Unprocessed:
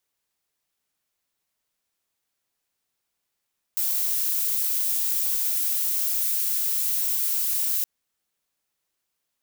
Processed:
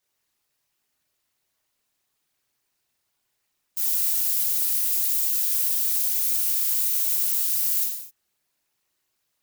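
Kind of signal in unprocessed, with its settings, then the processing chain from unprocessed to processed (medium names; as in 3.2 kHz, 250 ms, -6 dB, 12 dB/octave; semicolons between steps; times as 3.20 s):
noise violet, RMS -24.5 dBFS 4.07 s
peak limiter -17 dBFS; gated-style reverb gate 280 ms falling, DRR -3 dB; Nellymoser 88 kbps 44.1 kHz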